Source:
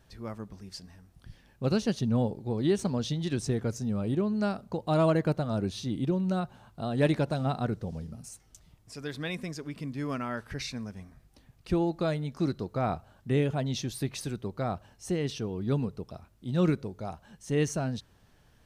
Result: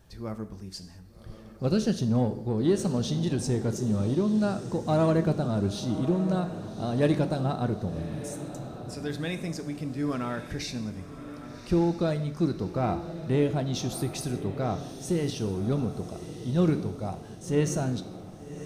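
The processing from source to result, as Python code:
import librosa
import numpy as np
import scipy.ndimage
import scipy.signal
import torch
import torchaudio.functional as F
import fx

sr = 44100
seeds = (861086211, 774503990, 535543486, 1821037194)

p1 = fx.peak_eq(x, sr, hz=2100.0, db=-4.5, octaves=2.5)
p2 = 10.0 ** (-29.5 / 20.0) * np.tanh(p1 / 10.0 ** (-29.5 / 20.0))
p3 = p1 + (p2 * librosa.db_to_amplitude(-4.5))
p4 = fx.echo_diffused(p3, sr, ms=1160, feedback_pct=45, wet_db=-11.5)
y = fx.rev_gated(p4, sr, seeds[0], gate_ms=240, shape='falling', drr_db=9.0)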